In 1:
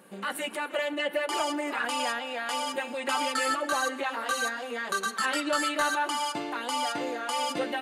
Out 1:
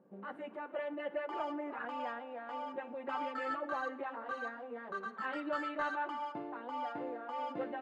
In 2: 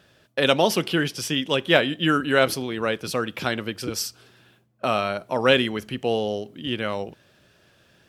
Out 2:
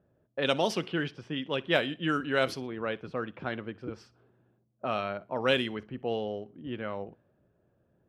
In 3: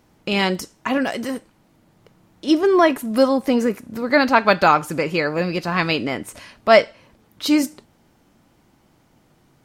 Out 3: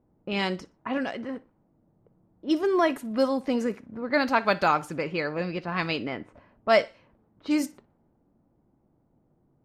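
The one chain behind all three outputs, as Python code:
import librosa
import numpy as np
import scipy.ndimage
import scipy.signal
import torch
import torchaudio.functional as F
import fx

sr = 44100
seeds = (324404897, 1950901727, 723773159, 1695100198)

p1 = fx.env_lowpass(x, sr, base_hz=650.0, full_db=-13.0)
p2 = p1 + fx.echo_feedback(p1, sr, ms=60, feedback_pct=29, wet_db=-22.5, dry=0)
y = p2 * librosa.db_to_amplitude(-8.0)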